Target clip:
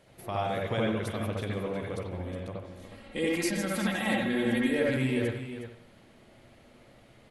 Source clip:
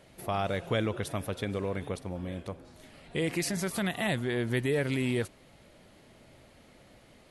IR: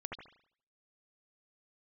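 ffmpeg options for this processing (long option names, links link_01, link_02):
-filter_complex "[0:a]asettb=1/sr,asplit=3[link_01][link_02][link_03];[link_01]atrim=end=2.774[link_04];[link_02]atrim=start=2.77:end=4.89,asetpts=PTS-STARTPTS,afade=type=in:duration=0.004:curve=qsin,afade=type=out:start_time=2.116:duration=0.004:curve=qsin,aecho=1:1:3.7:0.87,atrim=end_sample=93492[link_05];[link_03]atrim=start=4.886[link_06];[link_04][link_05]acrossfade=duration=0.004:curve1=hsin:curve2=qsin[link_07];[link_07][link_06]acrossfade=duration=0.004:curve1=qsin:curve2=hsin,aecho=1:1:364:0.299[link_08];[1:a]atrim=start_sample=2205[link_09];[link_08][link_09]afir=irnorm=-1:irlink=0,volume=1dB"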